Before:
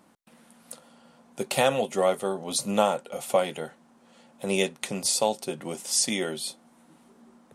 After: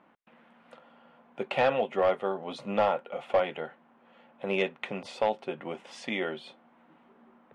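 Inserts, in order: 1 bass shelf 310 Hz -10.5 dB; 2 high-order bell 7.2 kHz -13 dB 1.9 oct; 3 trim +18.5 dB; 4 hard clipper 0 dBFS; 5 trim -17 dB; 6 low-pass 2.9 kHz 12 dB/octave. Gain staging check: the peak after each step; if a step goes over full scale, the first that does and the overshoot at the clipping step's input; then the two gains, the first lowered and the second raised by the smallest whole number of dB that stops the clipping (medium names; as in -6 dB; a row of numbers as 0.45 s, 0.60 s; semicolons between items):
-8.0 dBFS, -9.5 dBFS, +9.0 dBFS, 0.0 dBFS, -17.0 dBFS, -16.5 dBFS; step 3, 9.0 dB; step 3 +9.5 dB, step 5 -8 dB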